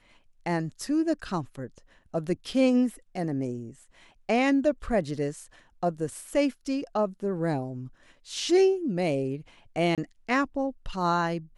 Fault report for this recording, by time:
9.95–9.98 gap 27 ms

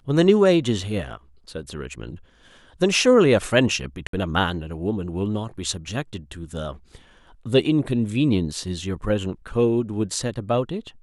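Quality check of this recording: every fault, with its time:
4.07–4.13 gap 63 ms

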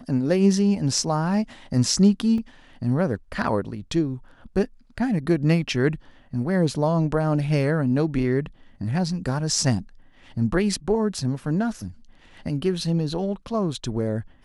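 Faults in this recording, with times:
2.38 gap 2.3 ms

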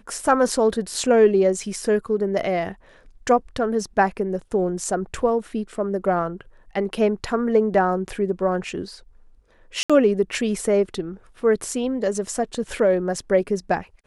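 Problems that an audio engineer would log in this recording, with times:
9.83–9.9 gap 66 ms

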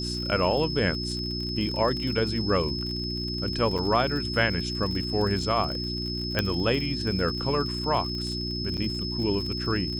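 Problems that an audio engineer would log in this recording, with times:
crackle 53/s -32 dBFS
hum 60 Hz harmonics 6 -33 dBFS
tone 5200 Hz -32 dBFS
3.78–3.79 gap 6.2 ms
6.39 pop -9 dBFS
8.77–8.78 gap 7.3 ms

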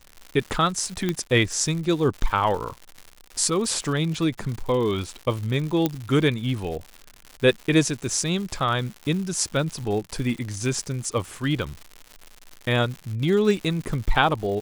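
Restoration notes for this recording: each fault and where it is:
crackle 180/s -31 dBFS
1.09 pop -11 dBFS
5.86 pop -8 dBFS

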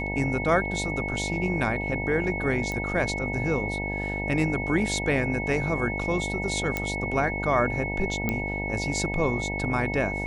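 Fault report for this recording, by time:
buzz 50 Hz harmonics 19 -32 dBFS
tone 2200 Hz -31 dBFS
2.72 pop -18 dBFS
6.77 pop -12 dBFS
8.29 pop -12 dBFS

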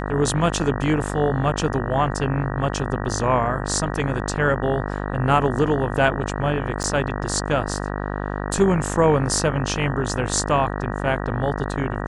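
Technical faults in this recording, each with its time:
buzz 50 Hz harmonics 38 -27 dBFS
6.83–6.84 gap 9.4 ms

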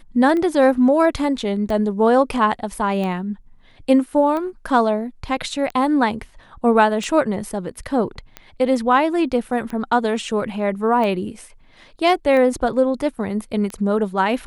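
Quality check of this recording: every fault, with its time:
tick 45 rpm -16 dBFS

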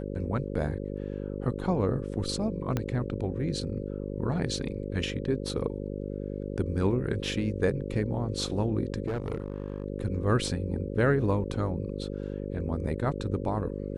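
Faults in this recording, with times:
buzz 50 Hz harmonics 11 -35 dBFS
2.77 pop -15 dBFS
9.06–9.84 clipped -27 dBFS

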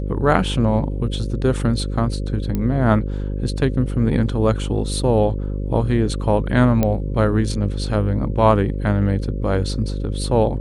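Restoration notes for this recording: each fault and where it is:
buzz 50 Hz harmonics 11 -24 dBFS
2.55 pop -11 dBFS
6.83 pop -6 dBFS

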